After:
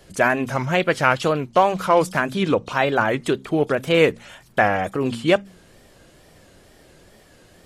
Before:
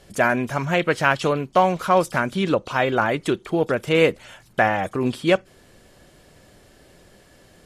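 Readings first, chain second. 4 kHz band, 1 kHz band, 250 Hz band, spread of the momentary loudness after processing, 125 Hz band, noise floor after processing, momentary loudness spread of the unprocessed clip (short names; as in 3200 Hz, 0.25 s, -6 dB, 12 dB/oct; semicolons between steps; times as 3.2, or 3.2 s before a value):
+1.0 dB, +1.0 dB, +0.5 dB, 5 LU, +0.5 dB, -52 dBFS, 5 LU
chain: de-hum 61.85 Hz, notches 4; wow and flutter 120 cents; gain +1 dB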